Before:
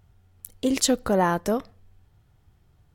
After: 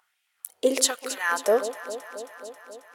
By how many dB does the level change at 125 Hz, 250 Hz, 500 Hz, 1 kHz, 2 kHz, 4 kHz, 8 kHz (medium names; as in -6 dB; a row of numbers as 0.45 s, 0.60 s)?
under -25 dB, -10.0 dB, +1.5 dB, -3.5 dB, +5.5 dB, +1.0 dB, +2.5 dB